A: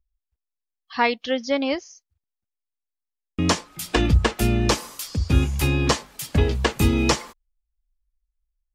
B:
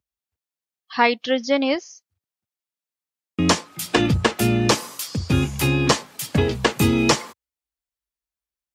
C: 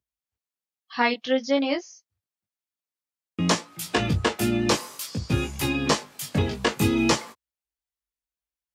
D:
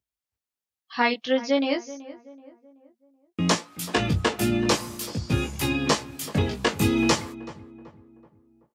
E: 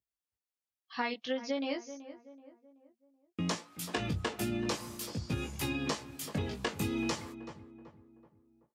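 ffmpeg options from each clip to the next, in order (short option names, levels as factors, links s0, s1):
-af "highpass=f=97:w=0.5412,highpass=f=97:w=1.3066,volume=1.41"
-af "flanger=delay=17.5:depth=3.1:speed=0.55,volume=0.891"
-filter_complex "[0:a]asplit=2[s0][s1];[s1]adelay=379,lowpass=f=1400:p=1,volume=0.158,asplit=2[s2][s3];[s3]adelay=379,lowpass=f=1400:p=1,volume=0.45,asplit=2[s4][s5];[s5]adelay=379,lowpass=f=1400:p=1,volume=0.45,asplit=2[s6][s7];[s7]adelay=379,lowpass=f=1400:p=1,volume=0.45[s8];[s0][s2][s4][s6][s8]amix=inputs=5:normalize=0"
-af "acompressor=threshold=0.0794:ratio=6,volume=0.422"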